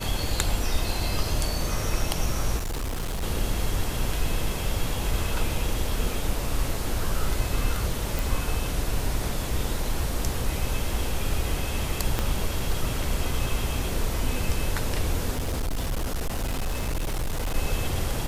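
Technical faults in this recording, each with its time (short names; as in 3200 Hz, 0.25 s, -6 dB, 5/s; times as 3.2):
2.57–3.24 clipped -26 dBFS
8.19 pop
12.19 pop -10 dBFS
15.31–17.56 clipped -23.5 dBFS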